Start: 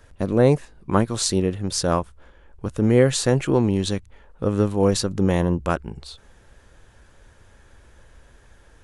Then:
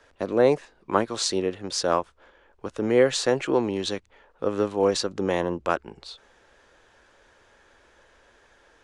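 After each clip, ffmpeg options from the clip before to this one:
-filter_complex "[0:a]acrossover=split=290 7200:gain=0.141 1 0.126[a][b][c];[a][b][c]amix=inputs=3:normalize=0"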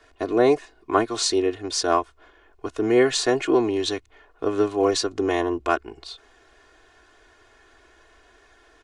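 -af "aecho=1:1:2.8:0.95"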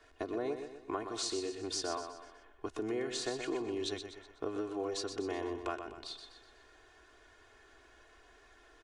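-filter_complex "[0:a]acompressor=threshold=-28dB:ratio=6,asplit=2[a][b];[b]aecho=0:1:124|248|372|496|620:0.398|0.179|0.0806|0.0363|0.0163[c];[a][c]amix=inputs=2:normalize=0,volume=-6.5dB"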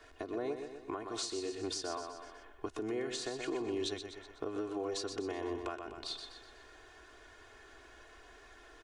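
-af "alimiter=level_in=8dB:limit=-24dB:level=0:latency=1:release=468,volume=-8dB,volume=4.5dB"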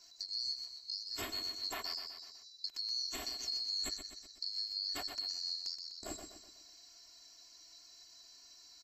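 -af "afftfilt=real='real(if(lt(b,736),b+184*(1-2*mod(floor(b/184),2)),b),0)':imag='imag(if(lt(b,736),b+184*(1-2*mod(floor(b/184),2)),b),0)':win_size=2048:overlap=0.75,volume=-2dB"

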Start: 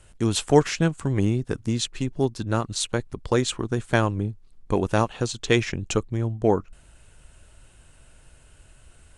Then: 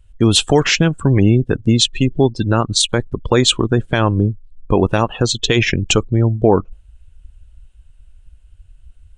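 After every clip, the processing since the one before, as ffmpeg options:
-af "afftdn=nr=26:nf=-37,equalizer=f=3.2k:w=1.5:g=7,alimiter=level_in=12.5dB:limit=-1dB:release=50:level=0:latency=1,volume=-1dB"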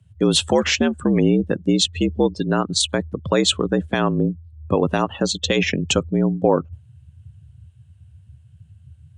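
-af "afreqshift=68,volume=-4.5dB"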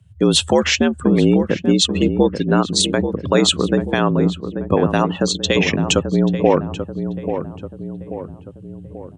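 -filter_complex "[0:a]asplit=2[a][b];[b]adelay=836,lowpass=f=1.2k:p=1,volume=-8dB,asplit=2[c][d];[d]adelay=836,lowpass=f=1.2k:p=1,volume=0.53,asplit=2[e][f];[f]adelay=836,lowpass=f=1.2k:p=1,volume=0.53,asplit=2[g][h];[h]adelay=836,lowpass=f=1.2k:p=1,volume=0.53,asplit=2[i][j];[j]adelay=836,lowpass=f=1.2k:p=1,volume=0.53,asplit=2[k][l];[l]adelay=836,lowpass=f=1.2k:p=1,volume=0.53[m];[a][c][e][g][i][k][m]amix=inputs=7:normalize=0,volume=2.5dB"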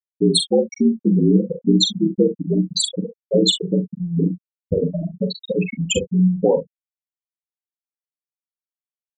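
-af "aemphasis=mode=production:type=50fm,afftfilt=real='re*gte(hypot(re,im),1)':imag='im*gte(hypot(re,im),1)':win_size=1024:overlap=0.75,aecho=1:1:43|65:0.422|0.133"

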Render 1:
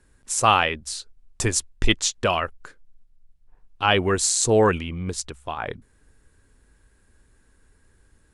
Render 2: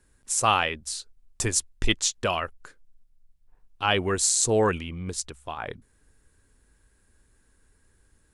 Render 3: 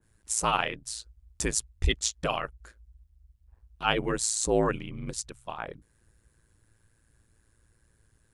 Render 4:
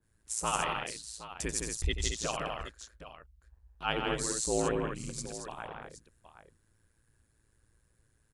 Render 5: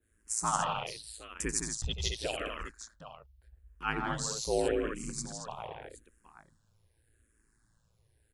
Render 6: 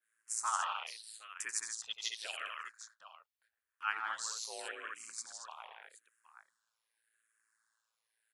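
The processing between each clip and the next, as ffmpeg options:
-af "highshelf=f=5.8k:g=6,volume=-4.5dB"
-af "aeval=exprs='val(0)*sin(2*PI*56*n/s)':c=same,adynamicequalizer=threshold=0.01:dfrequency=1900:dqfactor=0.7:tfrequency=1900:tqfactor=0.7:attack=5:release=100:ratio=0.375:range=2.5:mode=cutabove:tftype=highshelf"
-af "aecho=1:1:88|161|224|768:0.335|0.596|0.473|0.211,volume=-6.5dB"
-filter_complex "[0:a]asplit=2[a][b];[b]afreqshift=-0.84[c];[a][c]amix=inputs=2:normalize=1,volume=2.5dB"
-af "highpass=f=1.3k:t=q:w=1.5,volume=-4.5dB"

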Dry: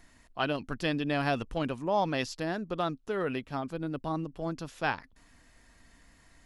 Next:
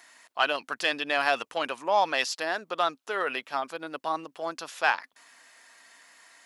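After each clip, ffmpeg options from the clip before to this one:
-filter_complex "[0:a]highpass=760,asplit=2[a][b];[b]asoftclip=type=tanh:threshold=-24.5dB,volume=-3.5dB[c];[a][c]amix=inputs=2:normalize=0,volume=4.5dB"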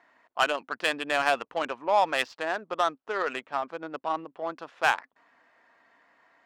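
-af "adynamicsmooth=sensitivity=1.5:basefreq=1.4k,volume=1dB"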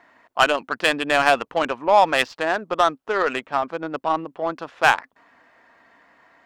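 -af "lowshelf=f=200:g=8.5,volume=7dB"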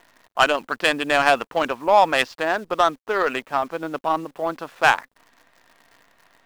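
-af "acrusher=bits=9:dc=4:mix=0:aa=0.000001"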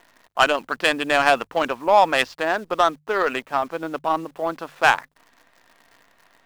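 -af "bandreject=f=50:t=h:w=6,bandreject=f=100:t=h:w=6,bandreject=f=150:t=h:w=6"

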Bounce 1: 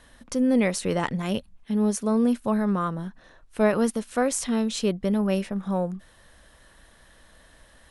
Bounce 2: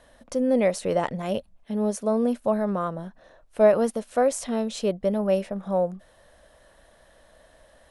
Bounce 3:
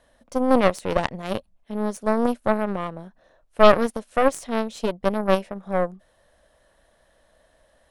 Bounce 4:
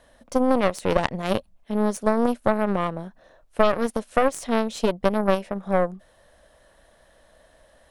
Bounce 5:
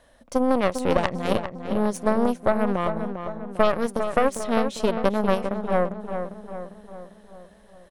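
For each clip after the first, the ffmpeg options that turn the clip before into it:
-af "equalizer=f=610:w=1.7:g=12,volume=-4.5dB"
-af "aeval=exprs='0.447*(cos(1*acos(clip(val(0)/0.447,-1,1)))-cos(1*PI/2))+0.2*(cos(4*acos(clip(val(0)/0.447,-1,1)))-cos(4*PI/2))+0.0282*(cos(5*acos(clip(val(0)/0.447,-1,1)))-cos(5*PI/2))+0.0562*(cos(6*acos(clip(val(0)/0.447,-1,1)))-cos(6*PI/2))+0.0562*(cos(7*acos(clip(val(0)/0.447,-1,1)))-cos(7*PI/2))':c=same,volume=2dB"
-af "acompressor=threshold=-19dB:ratio=6,volume=4.5dB"
-filter_complex "[0:a]asplit=2[a][b];[b]adelay=400,lowpass=f=2.2k:p=1,volume=-7.5dB,asplit=2[c][d];[d]adelay=400,lowpass=f=2.2k:p=1,volume=0.55,asplit=2[e][f];[f]adelay=400,lowpass=f=2.2k:p=1,volume=0.55,asplit=2[g][h];[h]adelay=400,lowpass=f=2.2k:p=1,volume=0.55,asplit=2[i][j];[j]adelay=400,lowpass=f=2.2k:p=1,volume=0.55,asplit=2[k][l];[l]adelay=400,lowpass=f=2.2k:p=1,volume=0.55,asplit=2[m][n];[n]adelay=400,lowpass=f=2.2k:p=1,volume=0.55[o];[a][c][e][g][i][k][m][o]amix=inputs=8:normalize=0,volume=-1dB"

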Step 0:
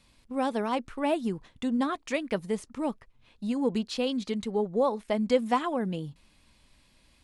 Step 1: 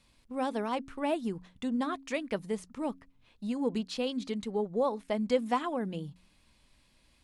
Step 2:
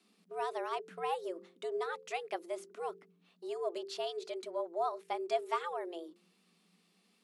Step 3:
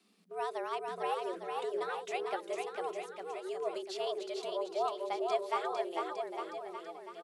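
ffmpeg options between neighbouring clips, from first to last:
-af "bandreject=f=90.44:t=h:w=4,bandreject=f=180.88:t=h:w=4,bandreject=f=271.32:t=h:w=4,volume=-3.5dB"
-af "afreqshift=170,bandreject=f=130.9:t=h:w=4,bandreject=f=261.8:t=h:w=4,bandreject=f=392.7:t=h:w=4,bandreject=f=523.6:t=h:w=4,asubboost=boost=10:cutoff=69,volume=-4.5dB"
-af "aecho=1:1:450|855|1220|1548|1843:0.631|0.398|0.251|0.158|0.1"

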